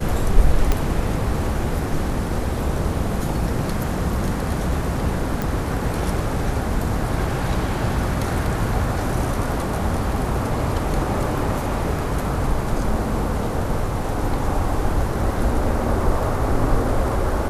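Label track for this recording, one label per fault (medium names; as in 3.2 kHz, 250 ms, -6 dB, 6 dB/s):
0.720000	0.720000	pop -6 dBFS
5.420000	5.420000	pop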